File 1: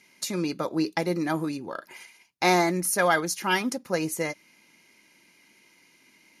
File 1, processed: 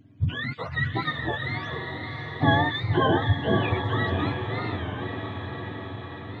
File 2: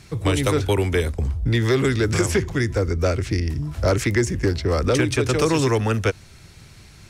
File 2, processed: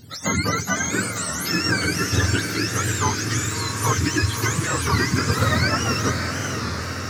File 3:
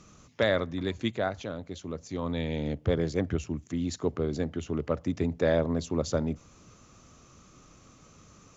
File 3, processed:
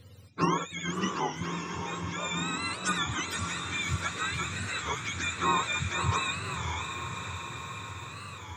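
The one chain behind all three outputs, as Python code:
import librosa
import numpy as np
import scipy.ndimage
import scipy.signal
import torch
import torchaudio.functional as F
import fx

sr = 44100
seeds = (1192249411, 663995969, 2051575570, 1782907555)

y = fx.octave_mirror(x, sr, pivot_hz=780.0)
y = fx.echo_diffused(y, sr, ms=601, feedback_pct=70, wet_db=-6.0)
y = fx.record_warp(y, sr, rpm=33.33, depth_cents=160.0)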